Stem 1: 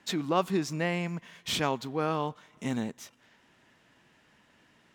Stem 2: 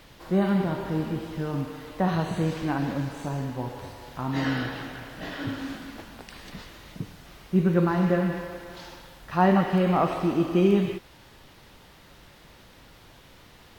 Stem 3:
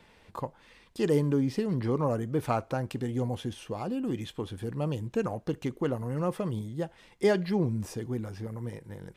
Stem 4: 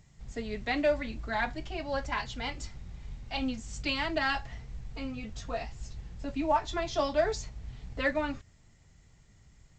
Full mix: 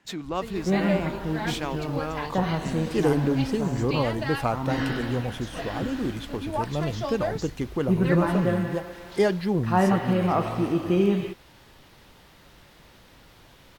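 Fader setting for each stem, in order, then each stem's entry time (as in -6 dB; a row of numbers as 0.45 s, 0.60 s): -3.0 dB, -1.0 dB, +2.5 dB, -2.5 dB; 0.00 s, 0.35 s, 1.95 s, 0.05 s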